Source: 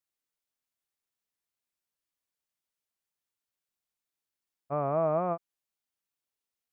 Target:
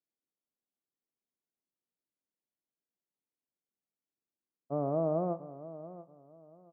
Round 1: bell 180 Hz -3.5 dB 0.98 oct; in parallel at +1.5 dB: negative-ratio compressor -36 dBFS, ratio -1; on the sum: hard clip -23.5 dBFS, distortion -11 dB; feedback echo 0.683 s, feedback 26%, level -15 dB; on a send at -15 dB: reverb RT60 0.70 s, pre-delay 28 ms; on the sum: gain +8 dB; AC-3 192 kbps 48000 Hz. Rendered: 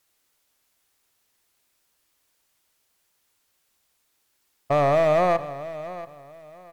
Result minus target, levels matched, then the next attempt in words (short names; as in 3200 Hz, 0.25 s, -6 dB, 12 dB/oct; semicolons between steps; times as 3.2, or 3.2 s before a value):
250 Hz band -7.0 dB
ladder band-pass 260 Hz, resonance 25%; bell 180 Hz -3.5 dB 0.98 oct; in parallel at +1.5 dB: negative-ratio compressor -36 dBFS, ratio -1; on the sum: hard clip -23.5 dBFS, distortion -120 dB; feedback echo 0.683 s, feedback 26%, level -15 dB; on a send at -15 dB: reverb RT60 0.70 s, pre-delay 28 ms; on the sum: gain +8 dB; AC-3 192 kbps 48000 Hz